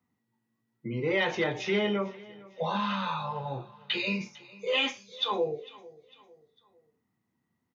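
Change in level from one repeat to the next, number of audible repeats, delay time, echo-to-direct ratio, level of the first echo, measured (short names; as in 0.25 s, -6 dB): -8.0 dB, 2, 0.451 s, -20.0 dB, -21.0 dB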